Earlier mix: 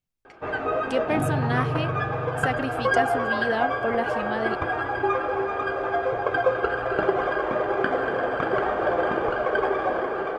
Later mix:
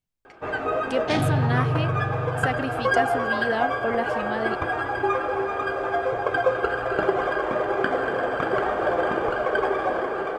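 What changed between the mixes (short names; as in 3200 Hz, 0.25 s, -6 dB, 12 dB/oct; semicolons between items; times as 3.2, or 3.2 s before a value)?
first sound: remove air absorption 74 m; second sound: remove band-pass 290 Hz, Q 0.66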